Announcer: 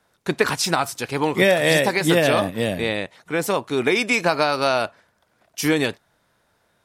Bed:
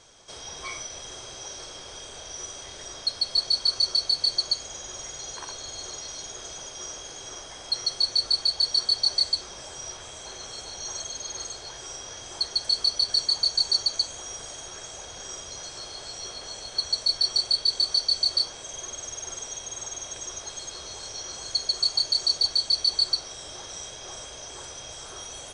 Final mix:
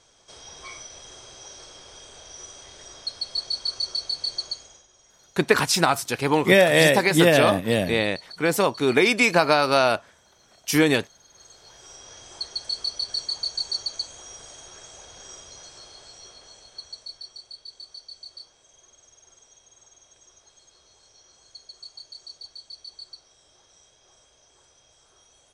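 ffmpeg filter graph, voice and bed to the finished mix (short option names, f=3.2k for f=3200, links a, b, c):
-filter_complex "[0:a]adelay=5100,volume=1dB[a];[1:a]volume=10.5dB,afade=t=out:st=4.42:d=0.45:silence=0.16788,afade=t=in:st=11.3:d=0.86:silence=0.177828,afade=t=out:st=15.29:d=2.07:silence=0.199526[b];[a][b]amix=inputs=2:normalize=0"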